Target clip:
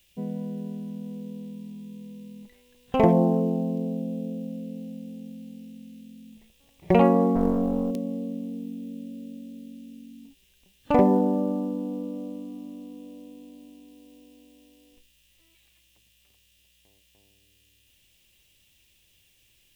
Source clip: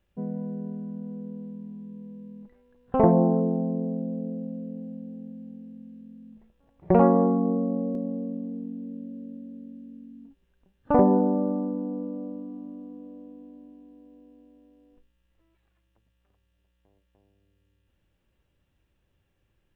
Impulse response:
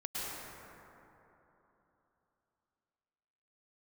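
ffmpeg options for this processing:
-filter_complex "[0:a]aexciter=amount=11.9:drive=3.5:freq=2.2k,asettb=1/sr,asplit=3[a][b][c];[a]atrim=end=7.354[d];[b]atrim=start=7.35:end=7.91,asetpts=PTS-STARTPTS,afade=t=in:d=0.004:c=qsin,afade=t=out:st=0.556:d=0.004:c=qsin,aeval=exprs='0.188*(cos(1*acos(clip(val(0)/0.188,-1,1)))-cos(1*PI/2))+0.0841*(cos(2*acos(clip(val(0)/0.188,-1,1)))-cos(2*PI/2))+0.0119*(cos(5*acos(clip(val(0)/0.188,-1,1)))-cos(5*PI/2))':c=same[e];[c]atrim=start=7.906[f];[d][e]acrossfade=d=0.004:c1=hsin:c2=qsin[g];[g][f]acrossfade=d=0.004:c1=qsin:c2=hsin"

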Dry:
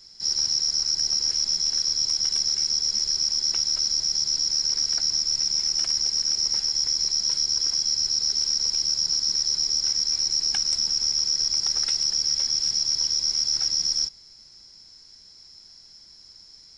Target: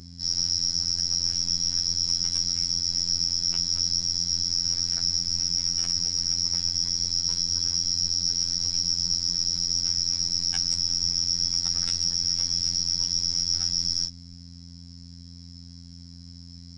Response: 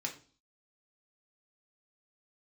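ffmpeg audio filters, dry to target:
-filter_complex "[0:a]acrossover=split=230|1400|1800[a][b][c][d];[b]crystalizer=i=3:c=0[e];[a][e][c][d]amix=inputs=4:normalize=0,bass=f=250:g=13,treble=f=4k:g=2,aeval=exprs='val(0)+0.0141*(sin(2*PI*60*n/s)+sin(2*PI*2*60*n/s)/2+sin(2*PI*3*60*n/s)/3+sin(2*PI*4*60*n/s)/4+sin(2*PI*5*60*n/s)/5)':c=same,afftfilt=real='hypot(re,im)*cos(PI*b)':imag='0':win_size=2048:overlap=0.75"

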